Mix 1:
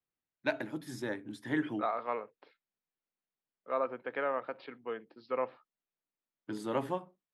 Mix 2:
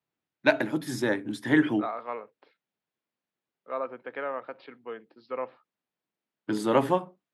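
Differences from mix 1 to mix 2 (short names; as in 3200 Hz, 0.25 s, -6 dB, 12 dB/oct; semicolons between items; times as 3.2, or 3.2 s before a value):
first voice +10.5 dB; master: add HPF 99 Hz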